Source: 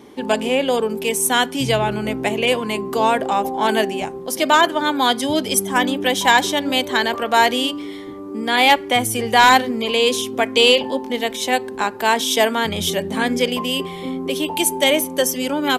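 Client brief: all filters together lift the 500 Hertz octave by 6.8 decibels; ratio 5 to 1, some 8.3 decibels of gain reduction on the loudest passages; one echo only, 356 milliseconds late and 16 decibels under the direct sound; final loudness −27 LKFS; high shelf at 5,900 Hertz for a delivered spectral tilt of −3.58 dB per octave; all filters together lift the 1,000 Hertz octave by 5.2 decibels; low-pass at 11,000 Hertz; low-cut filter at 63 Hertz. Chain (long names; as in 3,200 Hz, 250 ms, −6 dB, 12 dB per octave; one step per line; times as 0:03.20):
high-pass filter 63 Hz
low-pass filter 11,000 Hz
parametric band 500 Hz +7 dB
parametric band 1,000 Hz +4 dB
high-shelf EQ 5,900 Hz −5 dB
downward compressor 5 to 1, threshold −14 dBFS
single-tap delay 356 ms −16 dB
level −8 dB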